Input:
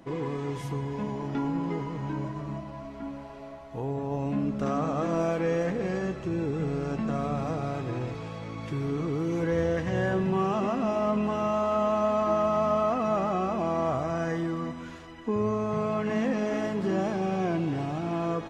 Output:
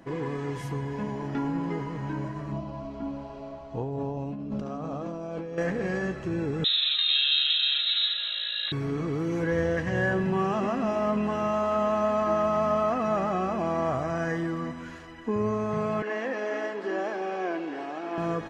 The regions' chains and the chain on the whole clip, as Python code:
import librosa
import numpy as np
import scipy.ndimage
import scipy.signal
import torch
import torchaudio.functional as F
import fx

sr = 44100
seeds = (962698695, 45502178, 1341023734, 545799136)

y = fx.chain(x, sr, fx.lowpass(hz=5300.0, slope=12),
    fx.peak_eq(hz=1800.0, db=-13.5, octaves=0.71),
    fx.over_compress(threshold_db=-33.0, ratio=-1.0), at=(2.52, 5.58))
y = fx.chain(y, sr, fx.freq_invert(carrier_hz=3900),
    fx.highpass(hz=480.0, slope=6),
    fx.high_shelf(hz=2900.0, db=12.0), at=(6.64, 8.72))
y = fx.chain(y, sr, fx.highpass(hz=320.0, slope=24),
    fx.air_absorb(metres=79.0), at=(16.02, 18.18))
y = fx.peak_eq(y, sr, hz=1700.0, db=7.0, octaves=0.27)
y = fx.notch(y, sr, hz=3600.0, q=16.0)